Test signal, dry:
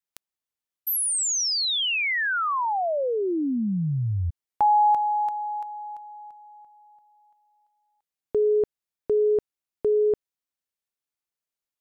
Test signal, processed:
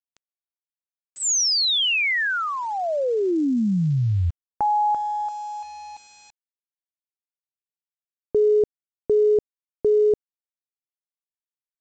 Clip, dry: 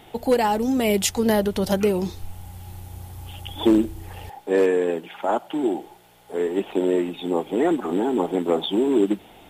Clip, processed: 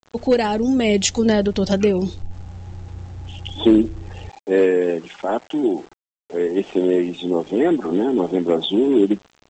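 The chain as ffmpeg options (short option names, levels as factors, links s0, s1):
-af "afftdn=nr=14:nf=-45,equalizer=f=970:t=o:w=1.1:g=-7.5,aresample=16000,aeval=exprs='val(0)*gte(abs(val(0)),0.00531)':c=same,aresample=44100,volume=1.68"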